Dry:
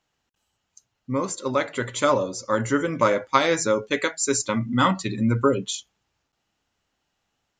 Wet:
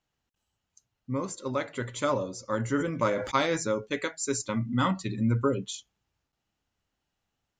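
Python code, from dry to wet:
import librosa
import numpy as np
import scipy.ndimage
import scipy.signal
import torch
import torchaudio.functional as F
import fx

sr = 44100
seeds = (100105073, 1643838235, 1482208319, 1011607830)

y = fx.low_shelf(x, sr, hz=200.0, db=7.5)
y = fx.sustainer(y, sr, db_per_s=66.0, at=(2.76, 3.56), fade=0.02)
y = y * 10.0 ** (-8.0 / 20.0)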